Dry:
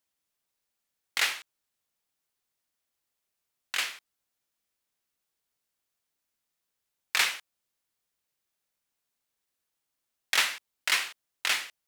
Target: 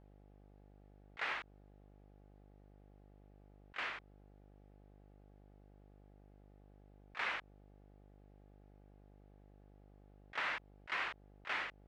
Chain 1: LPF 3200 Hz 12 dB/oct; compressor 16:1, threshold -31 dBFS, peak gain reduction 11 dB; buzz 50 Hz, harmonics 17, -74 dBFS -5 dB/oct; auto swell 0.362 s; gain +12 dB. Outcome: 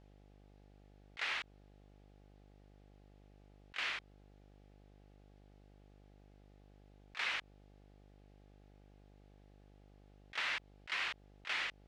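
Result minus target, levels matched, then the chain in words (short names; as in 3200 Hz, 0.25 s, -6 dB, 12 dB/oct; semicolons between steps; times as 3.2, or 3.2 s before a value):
4000 Hz band +4.5 dB
LPF 1500 Hz 12 dB/oct; compressor 16:1, threshold -31 dBFS, peak gain reduction 6 dB; buzz 50 Hz, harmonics 17, -74 dBFS -5 dB/oct; auto swell 0.362 s; gain +12 dB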